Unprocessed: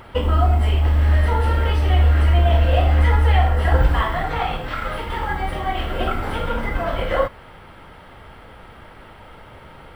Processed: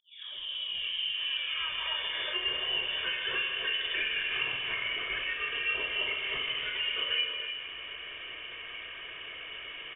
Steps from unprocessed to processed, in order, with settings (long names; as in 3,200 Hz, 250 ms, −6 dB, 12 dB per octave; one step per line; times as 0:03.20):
turntable start at the beginning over 2.22 s
high-pass filter 330 Hz 12 dB per octave
comb filter 1.7 ms, depth 69%
downward compressor 2 to 1, threshold −40 dBFS, peak gain reduction 15.5 dB
feedback echo with a low-pass in the loop 154 ms, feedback 75%, low-pass 2,300 Hz, level −8.5 dB
reverb whose tail is shaped and stops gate 350 ms rising, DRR 5.5 dB
voice inversion scrambler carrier 3,500 Hz